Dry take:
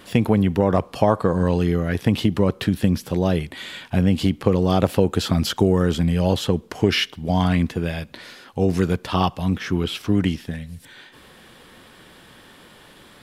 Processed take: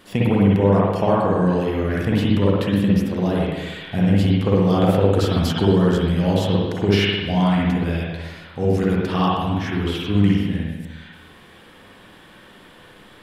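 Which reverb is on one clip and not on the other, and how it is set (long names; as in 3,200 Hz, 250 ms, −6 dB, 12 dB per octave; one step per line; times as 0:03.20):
spring reverb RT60 1.2 s, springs 50/60 ms, chirp 75 ms, DRR −5 dB
level −4.5 dB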